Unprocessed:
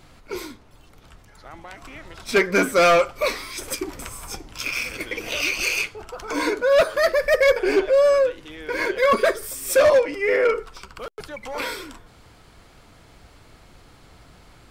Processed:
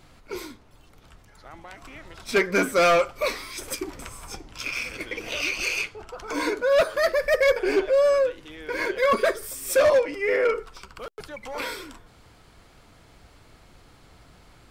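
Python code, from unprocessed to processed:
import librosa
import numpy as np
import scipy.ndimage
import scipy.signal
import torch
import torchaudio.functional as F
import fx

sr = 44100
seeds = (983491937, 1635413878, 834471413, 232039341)

y = fx.high_shelf(x, sr, hz=11000.0, db=-9.5, at=(3.9, 6.26))
y = y * 10.0 ** (-3.0 / 20.0)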